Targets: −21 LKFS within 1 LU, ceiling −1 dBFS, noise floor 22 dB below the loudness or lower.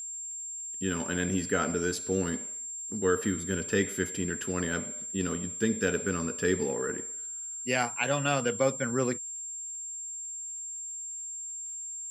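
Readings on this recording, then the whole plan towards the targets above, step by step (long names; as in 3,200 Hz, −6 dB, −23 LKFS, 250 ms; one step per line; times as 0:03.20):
crackle rate 49 per second; interfering tone 7,400 Hz; level of the tone −36 dBFS; integrated loudness −31.0 LKFS; sample peak −13.0 dBFS; target loudness −21.0 LKFS
→ click removal
notch filter 7,400 Hz, Q 30
level +10 dB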